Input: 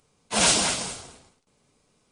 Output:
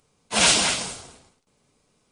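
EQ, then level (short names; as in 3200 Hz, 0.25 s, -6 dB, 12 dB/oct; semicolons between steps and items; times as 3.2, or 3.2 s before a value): dynamic EQ 2600 Hz, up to +5 dB, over -33 dBFS, Q 0.7; 0.0 dB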